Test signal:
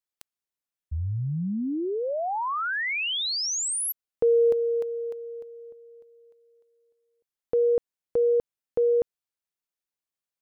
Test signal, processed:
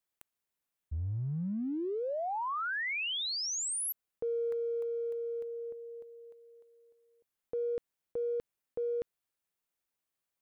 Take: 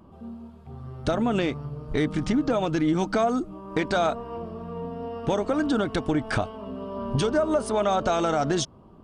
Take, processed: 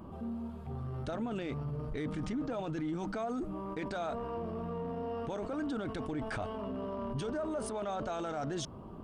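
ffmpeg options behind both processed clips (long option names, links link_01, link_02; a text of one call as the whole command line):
ffmpeg -i in.wav -af "equalizer=frequency=5100:width_type=o:width=1.4:gain=-4,areverse,acompressor=threshold=-38dB:ratio=5:attack=0.26:release=29:knee=6:detection=rms,areverse,volume=4dB" out.wav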